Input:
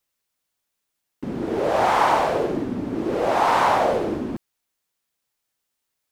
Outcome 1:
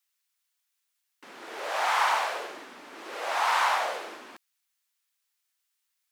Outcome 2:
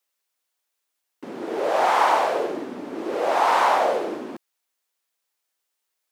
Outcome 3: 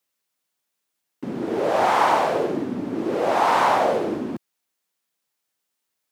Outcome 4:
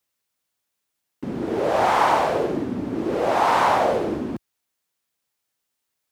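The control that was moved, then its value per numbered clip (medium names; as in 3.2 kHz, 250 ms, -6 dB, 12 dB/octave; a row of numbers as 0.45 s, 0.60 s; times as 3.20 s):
high-pass, cutoff frequency: 1.3 kHz, 400 Hz, 140 Hz, 50 Hz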